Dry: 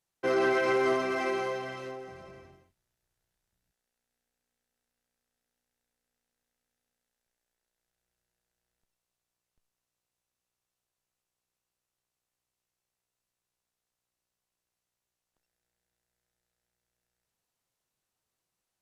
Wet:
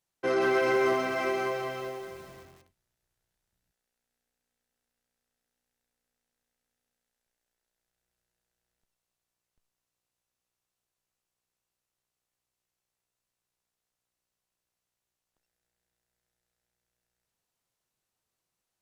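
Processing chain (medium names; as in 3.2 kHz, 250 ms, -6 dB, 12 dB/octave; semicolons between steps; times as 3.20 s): bit-crushed delay 182 ms, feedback 55%, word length 8-bit, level -8 dB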